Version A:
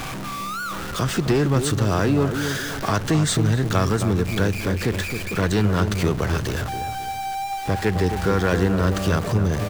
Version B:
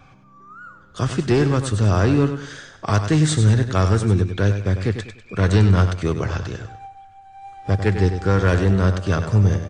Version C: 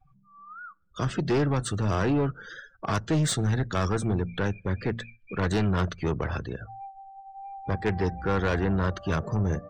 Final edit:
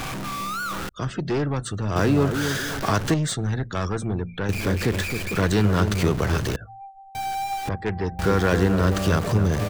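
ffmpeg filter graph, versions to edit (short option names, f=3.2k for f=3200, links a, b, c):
-filter_complex "[2:a]asplit=4[a][b][c][d];[0:a]asplit=5[e][f][g][h][i];[e]atrim=end=0.892[j];[a]atrim=start=0.888:end=1.962[k];[f]atrim=start=1.958:end=3.142[l];[b]atrim=start=3.138:end=4.492[m];[g]atrim=start=4.488:end=6.562[n];[c]atrim=start=6.558:end=7.152[o];[h]atrim=start=7.148:end=7.692[p];[d]atrim=start=7.688:end=8.192[q];[i]atrim=start=8.188[r];[j][k]acrossfade=d=0.004:c1=hsin:c2=hsin[s];[s][l]acrossfade=d=0.004:c1=hsin:c2=hsin[t];[t][m]acrossfade=d=0.004:c1=hsin:c2=hsin[u];[u][n]acrossfade=d=0.004:c1=hsin:c2=hsin[v];[v][o]acrossfade=d=0.004:c1=hsin:c2=hsin[w];[w][p]acrossfade=d=0.004:c1=hsin:c2=hsin[x];[x][q]acrossfade=d=0.004:c1=hsin:c2=hsin[y];[y][r]acrossfade=d=0.004:c1=hsin:c2=hsin"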